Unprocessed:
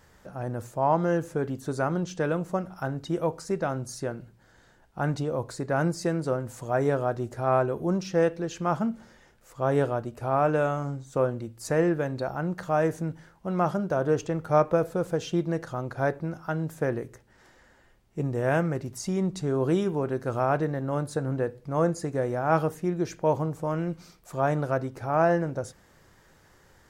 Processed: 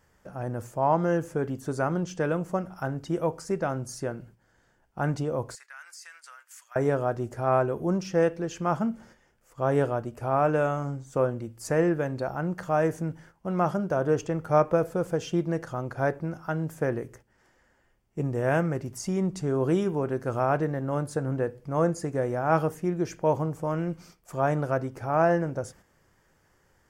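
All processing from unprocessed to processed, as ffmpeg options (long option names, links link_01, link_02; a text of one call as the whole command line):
ffmpeg -i in.wav -filter_complex "[0:a]asettb=1/sr,asplit=3[link_01][link_02][link_03];[link_01]atrim=end=5.554[link_04];[link_02]atrim=start=5.55:end=6.76,asetpts=PTS-STARTPTS,afade=type=in:duration=0.004:curve=qsin,afade=type=out:start_time=1.206:duration=0.004:curve=qsin,highpass=frequency=1500:width=0.5412,highpass=frequency=1500:width=1.3066,acompressor=threshold=-43dB:ratio=3:attack=3.2:release=140:knee=1:detection=peak[link_05];[link_03]atrim=start=6.756[link_06];[link_04][link_05]acrossfade=duration=0.004:curve1=hsin:curve2=qsin[link_07];[link_07][link_06]acrossfade=duration=0.004:curve1=qsin:curve2=hsin,agate=range=-7dB:threshold=-51dB:ratio=16:detection=peak,equalizer=frequency=3900:width=6.3:gain=-9.5" out.wav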